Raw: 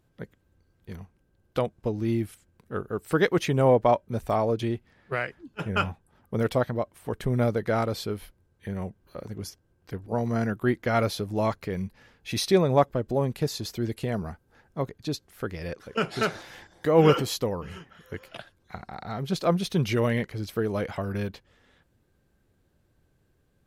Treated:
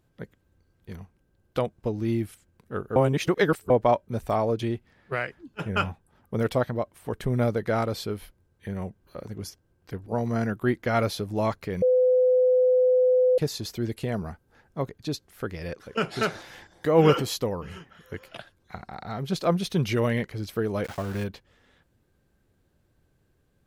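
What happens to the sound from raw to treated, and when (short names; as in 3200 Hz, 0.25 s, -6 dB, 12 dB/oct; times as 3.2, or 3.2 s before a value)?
2.96–3.7 reverse
11.82–13.38 bleep 506 Hz -16.5 dBFS
20.84–21.24 sample gate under -37.5 dBFS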